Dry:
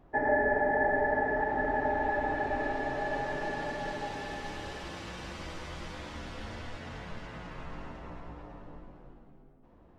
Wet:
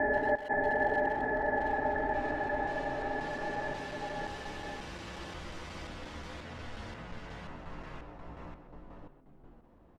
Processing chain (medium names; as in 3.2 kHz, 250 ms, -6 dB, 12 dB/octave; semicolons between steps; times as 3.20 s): slices played last to first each 178 ms, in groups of 3; speakerphone echo 130 ms, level -11 dB; trim -2 dB